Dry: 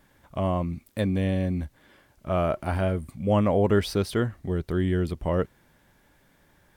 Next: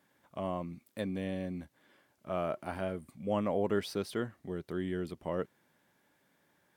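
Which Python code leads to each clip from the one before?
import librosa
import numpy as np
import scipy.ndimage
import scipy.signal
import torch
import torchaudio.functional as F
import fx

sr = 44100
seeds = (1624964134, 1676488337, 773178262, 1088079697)

y = scipy.signal.sosfilt(scipy.signal.butter(2, 170.0, 'highpass', fs=sr, output='sos'), x)
y = y * librosa.db_to_amplitude(-8.5)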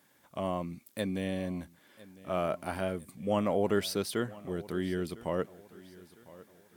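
y = fx.high_shelf(x, sr, hz=4100.0, db=8.5)
y = fx.echo_feedback(y, sr, ms=1004, feedback_pct=40, wet_db=-20)
y = y * librosa.db_to_amplitude(2.5)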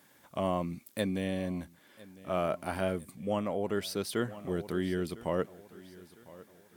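y = fx.rider(x, sr, range_db=5, speed_s=0.5)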